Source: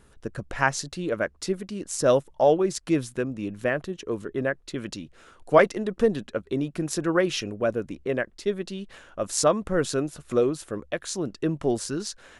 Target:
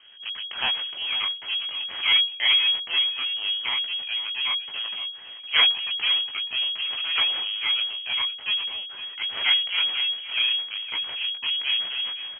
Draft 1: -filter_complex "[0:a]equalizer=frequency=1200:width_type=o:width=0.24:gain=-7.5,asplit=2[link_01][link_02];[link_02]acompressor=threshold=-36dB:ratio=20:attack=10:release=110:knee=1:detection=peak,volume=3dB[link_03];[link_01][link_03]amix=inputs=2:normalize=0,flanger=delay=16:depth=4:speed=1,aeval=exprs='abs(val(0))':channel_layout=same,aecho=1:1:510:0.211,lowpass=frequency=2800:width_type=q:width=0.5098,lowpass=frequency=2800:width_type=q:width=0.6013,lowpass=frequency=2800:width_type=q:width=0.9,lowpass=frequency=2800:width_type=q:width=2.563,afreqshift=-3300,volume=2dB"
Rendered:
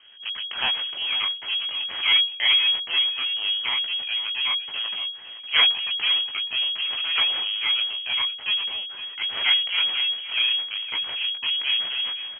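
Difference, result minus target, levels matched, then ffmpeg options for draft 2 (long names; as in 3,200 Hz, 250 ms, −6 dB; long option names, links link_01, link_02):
downward compressor: peak gain reduction −7.5 dB
-filter_complex "[0:a]equalizer=frequency=1200:width_type=o:width=0.24:gain=-7.5,asplit=2[link_01][link_02];[link_02]acompressor=threshold=-44dB:ratio=20:attack=10:release=110:knee=1:detection=peak,volume=3dB[link_03];[link_01][link_03]amix=inputs=2:normalize=0,flanger=delay=16:depth=4:speed=1,aeval=exprs='abs(val(0))':channel_layout=same,aecho=1:1:510:0.211,lowpass=frequency=2800:width_type=q:width=0.5098,lowpass=frequency=2800:width_type=q:width=0.6013,lowpass=frequency=2800:width_type=q:width=0.9,lowpass=frequency=2800:width_type=q:width=2.563,afreqshift=-3300,volume=2dB"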